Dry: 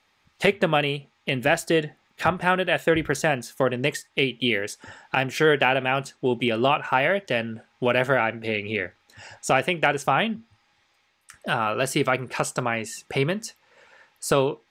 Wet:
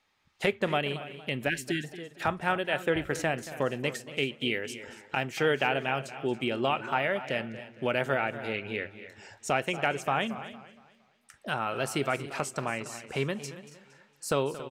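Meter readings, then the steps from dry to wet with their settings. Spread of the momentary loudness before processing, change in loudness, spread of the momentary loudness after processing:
8 LU, −7.0 dB, 12 LU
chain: single-tap delay 278 ms −16 dB
time-frequency box erased 0:01.49–0:01.84, 420–1,500 Hz
feedback echo with a swinging delay time 231 ms, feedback 36%, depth 112 cents, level −15 dB
level −7 dB

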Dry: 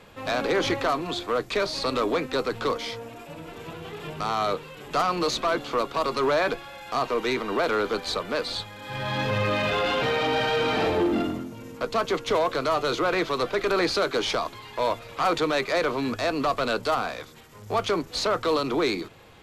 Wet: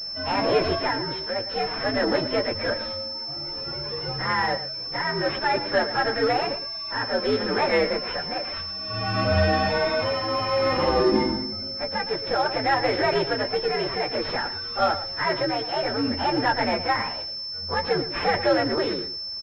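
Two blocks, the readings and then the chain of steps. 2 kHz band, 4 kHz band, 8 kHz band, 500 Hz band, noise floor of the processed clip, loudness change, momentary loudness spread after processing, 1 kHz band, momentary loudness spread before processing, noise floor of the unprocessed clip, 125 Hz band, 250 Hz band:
+2.0 dB, +4.5 dB, below −10 dB, +1.0 dB, −33 dBFS, +1.5 dB, 7 LU, +1.5 dB, 10 LU, −46 dBFS, +3.5 dB, +1.0 dB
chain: partials spread apart or drawn together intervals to 125%
shaped tremolo triangle 0.56 Hz, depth 55%
on a send: single-tap delay 113 ms −12.5 dB
on the sum: switching amplifier with a slow clock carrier 5,300 Hz
level +7 dB

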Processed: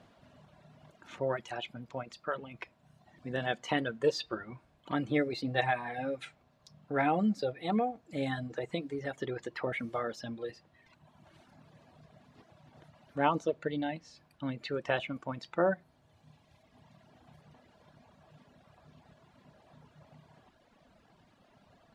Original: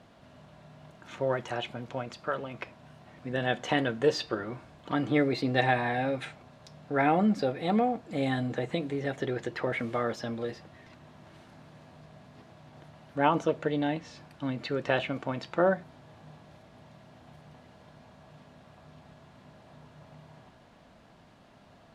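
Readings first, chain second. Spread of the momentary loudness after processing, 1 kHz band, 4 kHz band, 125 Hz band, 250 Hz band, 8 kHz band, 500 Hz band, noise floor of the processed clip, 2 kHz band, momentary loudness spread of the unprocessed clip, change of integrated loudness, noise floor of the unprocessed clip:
13 LU, −4.0 dB, −4.0 dB, −5.5 dB, −4.5 dB, −3.5 dB, −4.0 dB, −67 dBFS, −4.0 dB, 12 LU, −4.5 dB, −57 dBFS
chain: reverb reduction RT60 1.8 s
level −3 dB

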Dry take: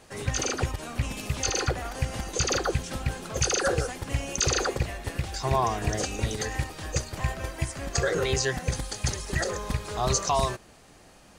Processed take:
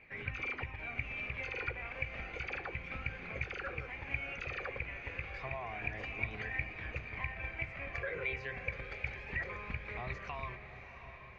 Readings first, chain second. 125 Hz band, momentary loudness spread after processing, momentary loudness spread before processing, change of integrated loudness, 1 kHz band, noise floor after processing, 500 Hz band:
−15.0 dB, 4 LU, 8 LU, −11.5 dB, −15.0 dB, −51 dBFS, −16.0 dB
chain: mains-hum notches 50/100/150/200/250/300/350/400 Hz
downward compressor, threshold −28 dBFS, peak gain reduction 8.5 dB
flanger 0.3 Hz, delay 0.4 ms, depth 1.7 ms, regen +51%
transistor ladder low-pass 2,400 Hz, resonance 85%
on a send: feedback delay with all-pass diffusion 691 ms, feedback 53%, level −10.5 dB
on the sum: level +5.5 dB

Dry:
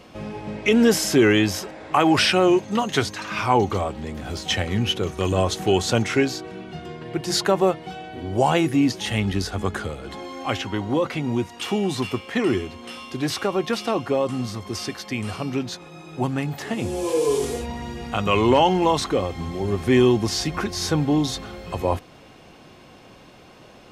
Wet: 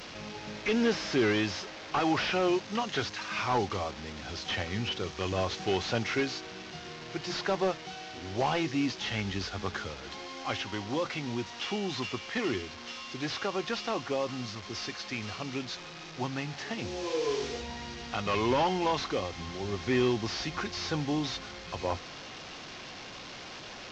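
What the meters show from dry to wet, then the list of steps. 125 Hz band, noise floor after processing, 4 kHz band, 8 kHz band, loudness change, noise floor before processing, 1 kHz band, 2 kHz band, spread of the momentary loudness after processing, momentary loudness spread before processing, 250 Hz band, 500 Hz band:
−11.0 dB, −45 dBFS, −7.5 dB, −12.0 dB, −10.0 dB, −48 dBFS, −8.5 dB, −6.5 dB, 13 LU, 15 LU, −11.0 dB, −10.0 dB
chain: linear delta modulator 32 kbit/s, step −31 dBFS
tilt shelving filter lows −4 dB, about 910 Hz
level −7.5 dB

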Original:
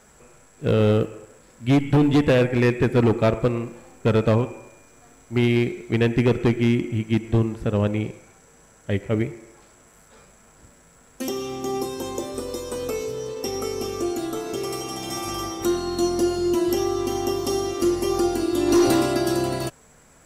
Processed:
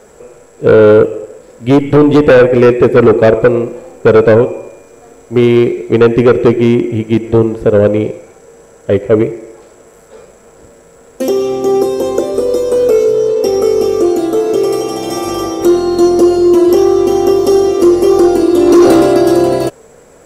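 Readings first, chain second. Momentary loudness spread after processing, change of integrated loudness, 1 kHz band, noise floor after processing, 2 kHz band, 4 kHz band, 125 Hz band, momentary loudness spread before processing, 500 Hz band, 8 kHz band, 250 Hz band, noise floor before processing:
10 LU, +13.0 dB, +11.5 dB, −41 dBFS, +10.0 dB, +6.0 dB, +5.5 dB, 11 LU, +16.0 dB, +5.5 dB, +11.5 dB, −54 dBFS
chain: parametric band 470 Hz +14.5 dB 1.1 octaves
in parallel at −11 dB: sine wavefolder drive 10 dB, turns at 3 dBFS
on the sum: level −1 dB

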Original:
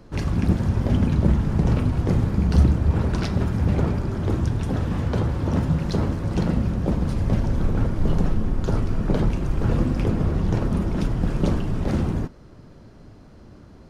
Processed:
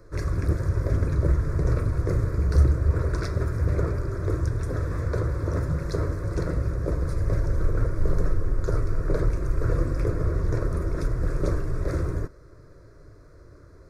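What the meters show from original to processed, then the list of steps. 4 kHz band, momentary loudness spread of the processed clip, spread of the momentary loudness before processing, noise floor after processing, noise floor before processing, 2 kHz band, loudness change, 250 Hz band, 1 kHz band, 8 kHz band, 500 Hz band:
−8.5 dB, 5 LU, 5 LU, −49 dBFS, −46 dBFS, −1.5 dB, −3.5 dB, −9.5 dB, −5.0 dB, can't be measured, −1.0 dB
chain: phaser with its sweep stopped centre 810 Hz, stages 6

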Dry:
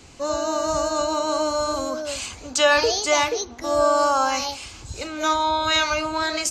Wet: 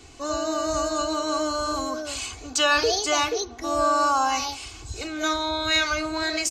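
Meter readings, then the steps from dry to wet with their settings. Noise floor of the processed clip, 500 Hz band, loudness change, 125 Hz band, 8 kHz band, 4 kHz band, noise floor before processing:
−42 dBFS, −4.5 dB, −2.5 dB, −1.0 dB, −1.5 dB, −1.0 dB, −42 dBFS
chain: comb filter 2.7 ms, depth 58%
in parallel at −12 dB: soft clipping −19.5 dBFS, distortion −11 dB
on the sum: level −4 dB

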